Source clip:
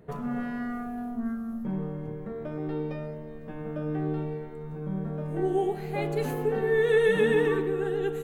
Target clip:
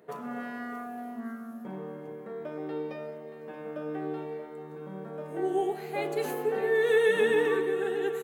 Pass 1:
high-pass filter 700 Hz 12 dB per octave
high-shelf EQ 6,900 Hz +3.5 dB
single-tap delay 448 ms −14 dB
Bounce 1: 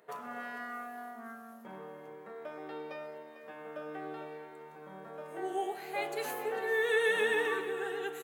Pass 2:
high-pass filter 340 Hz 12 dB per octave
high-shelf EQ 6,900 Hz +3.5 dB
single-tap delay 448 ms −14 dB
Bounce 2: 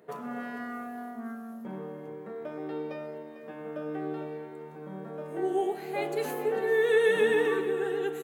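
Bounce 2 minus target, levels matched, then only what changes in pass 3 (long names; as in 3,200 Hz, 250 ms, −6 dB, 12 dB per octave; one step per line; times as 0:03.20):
echo 180 ms early
change: single-tap delay 628 ms −14 dB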